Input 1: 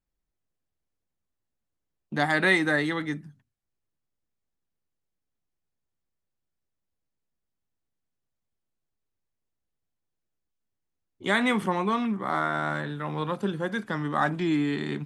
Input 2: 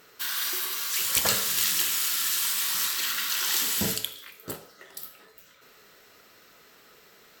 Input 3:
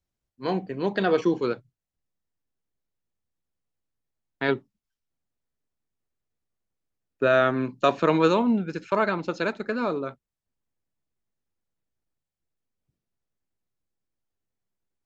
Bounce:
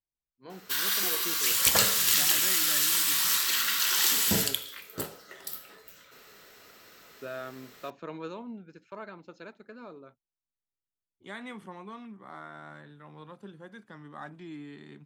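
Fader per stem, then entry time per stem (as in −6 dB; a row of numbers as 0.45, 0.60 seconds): −17.5, +1.5, −19.0 decibels; 0.00, 0.50, 0.00 seconds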